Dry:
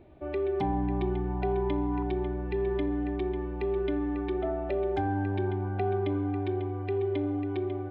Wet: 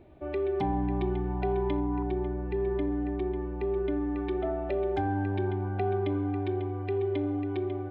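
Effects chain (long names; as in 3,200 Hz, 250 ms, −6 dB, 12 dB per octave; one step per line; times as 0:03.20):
0:01.80–0:04.16: high-shelf EQ 2,500 Hz −9.5 dB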